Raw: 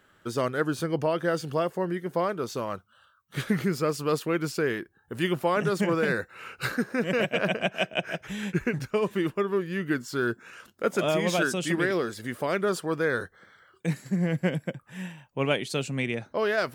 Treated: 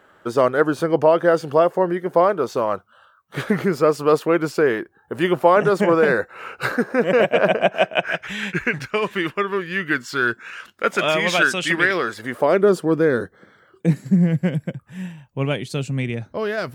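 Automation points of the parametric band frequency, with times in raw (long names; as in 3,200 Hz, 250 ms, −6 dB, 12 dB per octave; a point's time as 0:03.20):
parametric band +12.5 dB 2.8 octaves
0:07.78 700 Hz
0:08.29 2,100 Hz
0:11.93 2,100 Hz
0:12.78 270 Hz
0:13.88 270 Hz
0:14.38 73 Hz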